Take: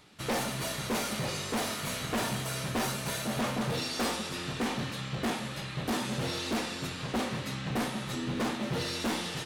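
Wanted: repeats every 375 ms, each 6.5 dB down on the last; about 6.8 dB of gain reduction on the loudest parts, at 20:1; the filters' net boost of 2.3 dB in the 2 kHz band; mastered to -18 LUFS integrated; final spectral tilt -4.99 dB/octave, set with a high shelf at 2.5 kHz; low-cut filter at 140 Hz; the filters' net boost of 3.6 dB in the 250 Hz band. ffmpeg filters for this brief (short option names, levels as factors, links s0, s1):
-af "highpass=140,equalizer=f=250:t=o:g=5,equalizer=f=2000:t=o:g=7,highshelf=f=2500:g=-9,acompressor=threshold=0.0316:ratio=20,aecho=1:1:375|750|1125|1500|1875|2250:0.473|0.222|0.105|0.0491|0.0231|0.0109,volume=6.68"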